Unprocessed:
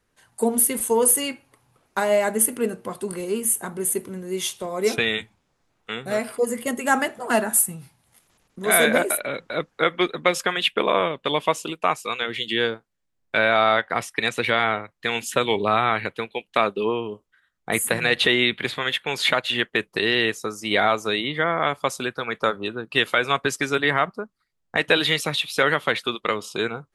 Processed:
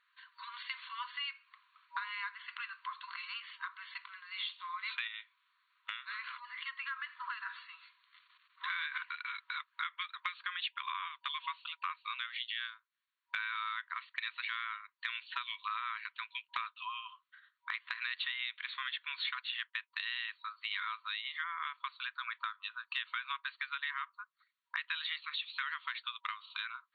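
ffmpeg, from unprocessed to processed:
-filter_complex "[0:a]asettb=1/sr,asplit=3[a][b][c];[a]atrim=end=5.074[d];[b]atrim=start=5.07:end=7.46,asetpts=PTS-STARTPTS,afade=t=in:d=0.004:c=qsin,afade=t=out:st=2.386:d=0.004:c=qsin,acompressor=threshold=-29dB:ratio=2.5:attack=3.2:release=140:knee=1:detection=peak[e];[c]atrim=start=7.456[f];[d][e]acrossfade=d=0.004:c1=hsin:c2=qsin[g];[g][f]acrossfade=d=0.004:c1=qsin:c2=hsin,afftfilt=real='re*between(b*sr/4096,960,4500)':imag='im*between(b*sr/4096,960,4500)':win_size=4096:overlap=0.75,acompressor=threshold=-41dB:ratio=4,volume=2dB"

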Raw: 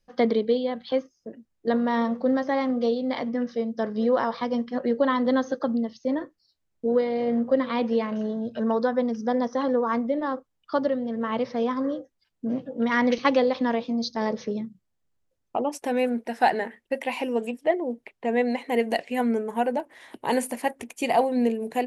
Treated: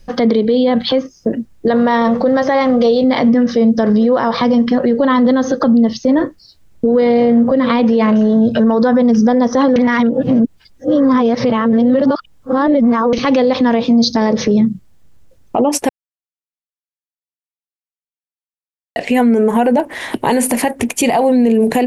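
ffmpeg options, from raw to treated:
-filter_complex "[0:a]asettb=1/sr,asplit=3[a][b][c];[a]atrim=end=1.684[d];[b]atrim=start=1.68:end=3.04,asetpts=PTS-STARTPTS,afade=t=in:d=0.004:c=qsin,afade=t=out:st=1.356:d=0.004:c=qsin,equalizer=f=260:t=o:w=0.77:g=-8.5[e];[c]atrim=start=3.036[f];[d][e]acrossfade=d=0.004:c1=hsin:c2=qsin[g];[g][f]acrossfade=d=0.004:c1=qsin:c2=hsin,asplit=5[h][i][j][k][l];[h]atrim=end=9.762[m];[i]atrim=start=9.758:end=13.132,asetpts=PTS-STARTPTS,areverse[n];[j]atrim=start=13.128:end=15.89,asetpts=PTS-STARTPTS,afade=t=out:st=2.758:d=0.004:c=hsin[o];[k]atrim=start=15.89:end=18.96,asetpts=PTS-STARTPTS,volume=0[p];[l]atrim=start=18.96,asetpts=PTS-STARTPTS,afade=t=in:d=0.004:c=hsin[q];[m][n]acrossfade=d=0.004:c1=hsin:c2=hsin[r];[o][p][q]concat=n=3:v=0:a=1[s];[r][s]acrossfade=d=0.004:c1=hsin:c2=hsin,acompressor=threshold=-27dB:ratio=6,lowshelf=f=200:g=9,alimiter=level_in=27dB:limit=-1dB:release=50:level=0:latency=1,volume=-4.5dB"

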